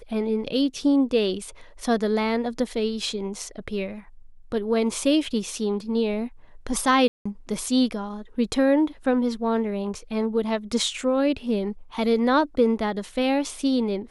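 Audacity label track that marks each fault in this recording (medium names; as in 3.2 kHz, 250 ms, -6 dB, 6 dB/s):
7.080000	7.250000	dropout 175 ms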